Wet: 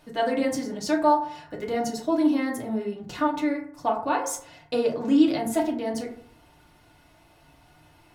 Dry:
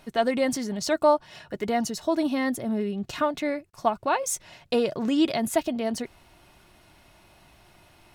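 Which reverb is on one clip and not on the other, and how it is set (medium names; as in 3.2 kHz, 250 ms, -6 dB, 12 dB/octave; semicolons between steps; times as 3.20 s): FDN reverb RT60 0.59 s, low-frequency decay 1.05×, high-frequency decay 0.4×, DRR -1.5 dB; trim -5 dB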